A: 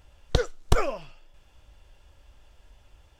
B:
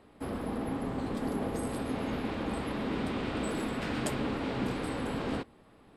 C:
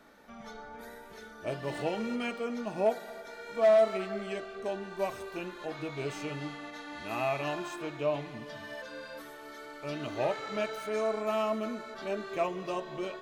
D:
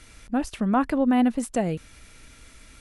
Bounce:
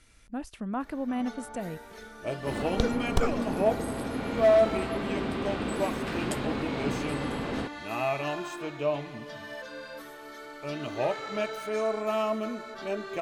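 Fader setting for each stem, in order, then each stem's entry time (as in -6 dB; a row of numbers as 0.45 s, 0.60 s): -5.0 dB, +1.0 dB, +2.0 dB, -10.5 dB; 2.45 s, 2.25 s, 0.80 s, 0.00 s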